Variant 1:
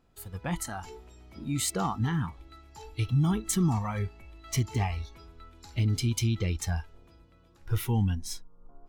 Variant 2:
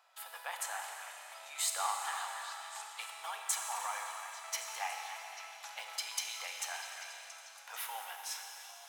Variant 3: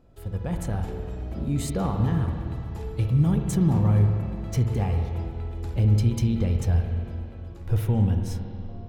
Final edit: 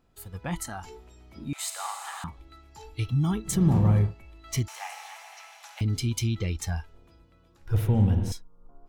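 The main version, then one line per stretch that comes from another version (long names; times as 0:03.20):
1
0:01.53–0:02.24: punch in from 2
0:03.56–0:04.03: punch in from 3, crossfade 0.24 s
0:04.68–0:05.81: punch in from 2
0:07.74–0:08.32: punch in from 3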